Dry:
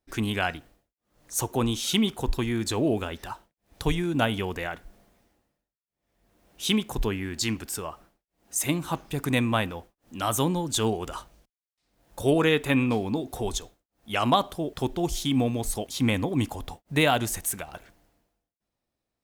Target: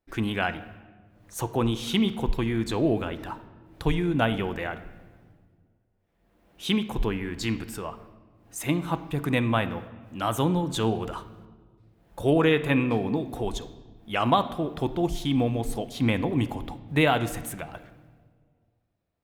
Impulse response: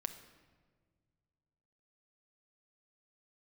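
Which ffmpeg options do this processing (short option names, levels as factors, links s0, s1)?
-filter_complex "[0:a]asplit=2[s0][s1];[1:a]atrim=start_sample=2205,lowpass=3700[s2];[s1][s2]afir=irnorm=-1:irlink=0,volume=1.88[s3];[s0][s3]amix=inputs=2:normalize=0,volume=0.422"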